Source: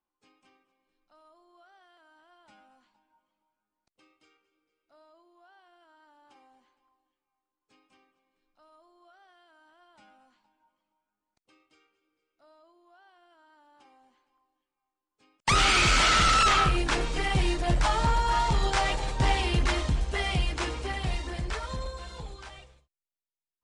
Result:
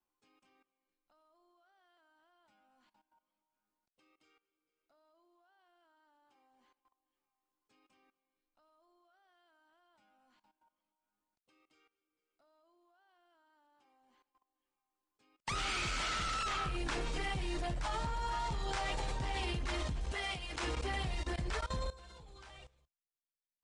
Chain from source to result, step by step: level held to a coarse grid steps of 18 dB; 20.12–20.63 s: bass shelf 320 Hz -9.5 dB

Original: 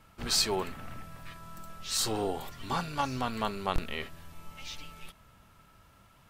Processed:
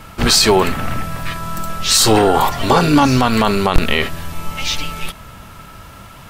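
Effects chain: 2.16–3.06 s: peaking EQ 2 kHz -> 220 Hz +13.5 dB 0.67 oct; loudness maximiser +23 dB; trim -1 dB

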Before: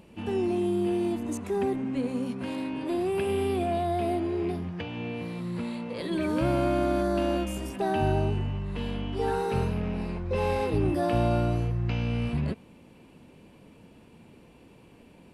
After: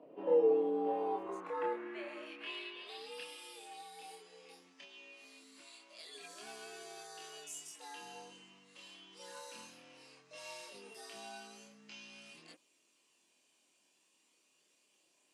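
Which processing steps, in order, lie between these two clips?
chorus voices 2, 0.16 Hz, delay 27 ms, depth 3.8 ms; frequency shift +92 Hz; band-pass sweep 590 Hz -> 6.8 kHz, 0.69–3.55 s; trim +6 dB

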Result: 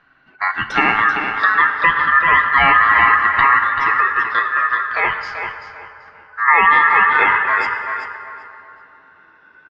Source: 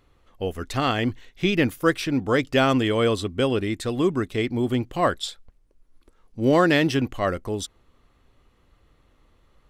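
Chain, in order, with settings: drifting ripple filter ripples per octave 1.1, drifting -0.36 Hz, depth 8 dB; low-pass 2.5 kHz 12 dB/octave; low-pass that closes with the level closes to 880 Hz, closed at -19.5 dBFS; 3.58–6.48 s: compression 3:1, threshold -26 dBFS, peak gain reduction 8 dB; ring modulator 1.5 kHz; flange 0.26 Hz, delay 6.9 ms, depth 6.4 ms, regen +46%; feedback delay 386 ms, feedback 27%, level -7.5 dB; reverberation RT60 3.4 s, pre-delay 5 ms, DRR 8 dB; loudness maximiser +16.5 dB; tape noise reduction on one side only decoder only; trim -1 dB

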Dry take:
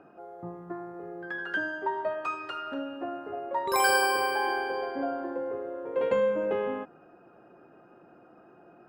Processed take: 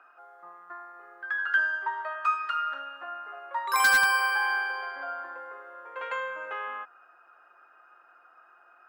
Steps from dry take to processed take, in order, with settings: resonant high-pass 1.3 kHz, resonance Q 2.6; wavefolder -14.5 dBFS

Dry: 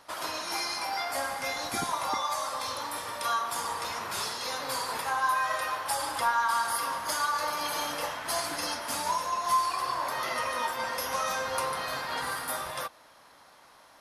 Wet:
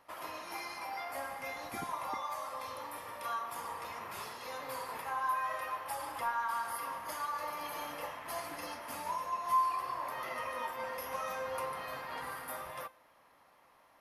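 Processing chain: high-order bell 5.7 kHz -9 dB; band-stop 1.5 kHz, Q 9.6; feedback comb 520 Hz, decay 0.51 s, mix 60%

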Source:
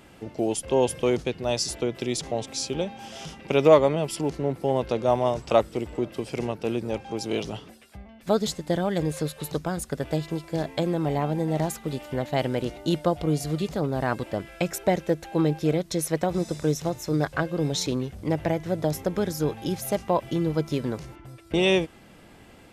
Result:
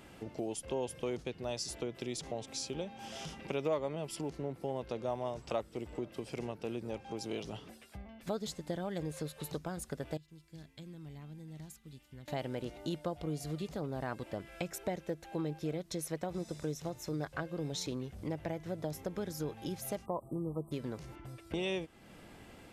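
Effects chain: 10.17–12.28 s: amplifier tone stack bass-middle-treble 6-0-2; 20.06–20.72 s: spectral selection erased 1.3–7.6 kHz; compression 2:1, threshold -38 dBFS, peak gain reduction 15 dB; trim -3.5 dB

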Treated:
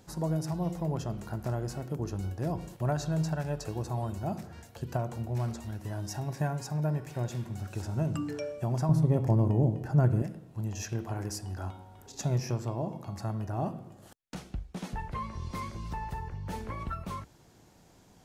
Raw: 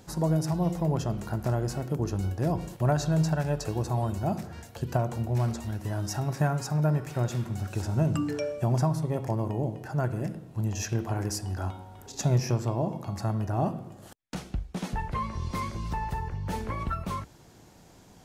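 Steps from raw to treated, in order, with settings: 5.96–7.54 s: band-stop 1.3 kHz, Q 6.4; 8.89–10.22 s: bass shelf 480 Hz +11.5 dB; trim -5 dB

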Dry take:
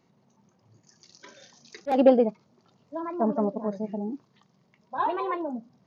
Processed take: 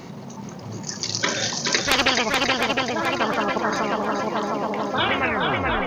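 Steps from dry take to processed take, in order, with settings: tape stop on the ending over 0.92 s; shuffle delay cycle 710 ms, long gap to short 1.5:1, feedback 36%, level -6 dB; spectrum-flattening compressor 10:1; trim +6 dB

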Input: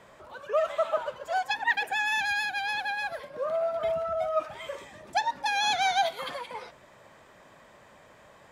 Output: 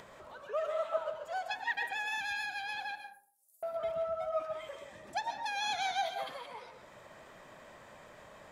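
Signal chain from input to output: 2.95–3.63 s: inverse Chebyshev high-pass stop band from 2.6 kHz, stop band 70 dB; upward compressor, threshold -36 dBFS; algorithmic reverb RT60 0.5 s, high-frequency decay 0.4×, pre-delay 90 ms, DRR 6 dB; trim -9 dB

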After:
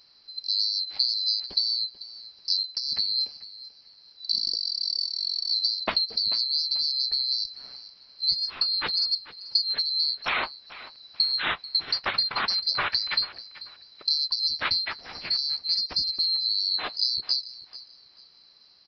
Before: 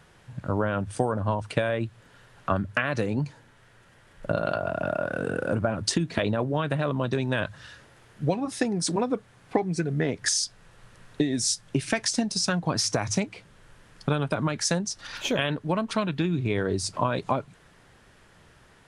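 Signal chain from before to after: split-band scrambler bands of 4 kHz; resampled via 11.025 kHz; feedback delay 439 ms, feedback 27%, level -17 dB

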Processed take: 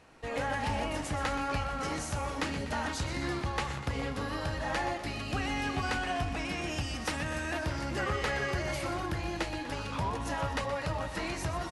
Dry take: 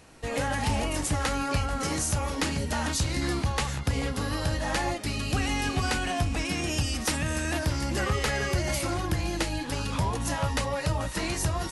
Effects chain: low-pass 1.9 kHz 6 dB/octave; bass shelf 460 Hz -8 dB; on a send: feedback delay 123 ms, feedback 55%, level -11 dB

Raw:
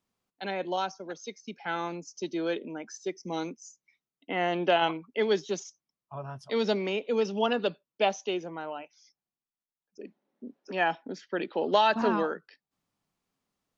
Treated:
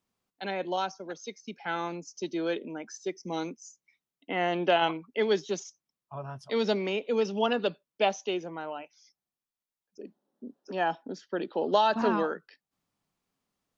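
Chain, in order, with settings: 10.01–11.93 s: peaking EQ 2.2 kHz -11 dB 0.66 oct

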